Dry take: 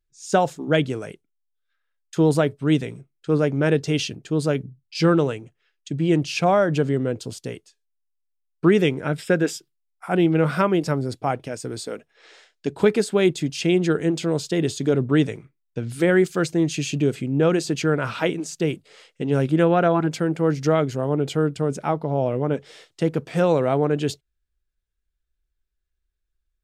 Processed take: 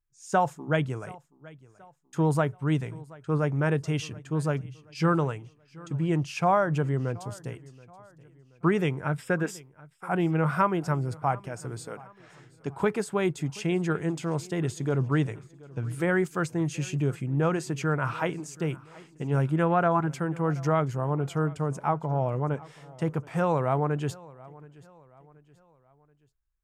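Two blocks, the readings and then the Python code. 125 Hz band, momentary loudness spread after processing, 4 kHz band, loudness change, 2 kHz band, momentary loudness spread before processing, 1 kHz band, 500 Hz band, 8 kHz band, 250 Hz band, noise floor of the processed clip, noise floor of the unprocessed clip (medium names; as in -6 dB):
-2.5 dB, 14 LU, -11.5 dB, -6.0 dB, -4.5 dB, 13 LU, -1.5 dB, -8.0 dB, -8.0 dB, -7.5 dB, -63 dBFS, -77 dBFS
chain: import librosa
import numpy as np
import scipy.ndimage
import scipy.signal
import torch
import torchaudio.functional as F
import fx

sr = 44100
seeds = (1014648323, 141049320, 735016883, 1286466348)

p1 = fx.graphic_eq(x, sr, hz=(125, 250, 500, 1000, 4000), db=(6, -5, -4, 8, -9))
p2 = p1 + fx.echo_feedback(p1, sr, ms=728, feedback_pct=43, wet_db=-22.0, dry=0)
y = p2 * 10.0 ** (-5.5 / 20.0)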